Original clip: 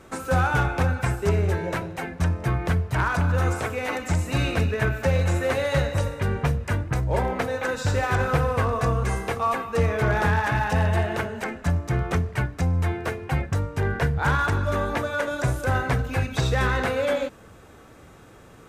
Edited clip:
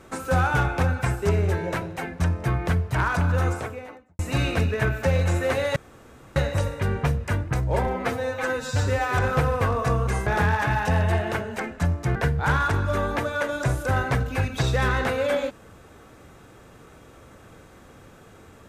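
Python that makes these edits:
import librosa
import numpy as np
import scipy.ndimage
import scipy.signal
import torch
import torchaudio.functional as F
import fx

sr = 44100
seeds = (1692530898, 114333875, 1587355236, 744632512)

y = fx.studio_fade_out(x, sr, start_s=3.33, length_s=0.86)
y = fx.edit(y, sr, fx.insert_room_tone(at_s=5.76, length_s=0.6),
    fx.stretch_span(start_s=7.27, length_s=0.87, factor=1.5),
    fx.cut(start_s=9.23, length_s=0.88),
    fx.cut(start_s=12.0, length_s=1.94), tone=tone)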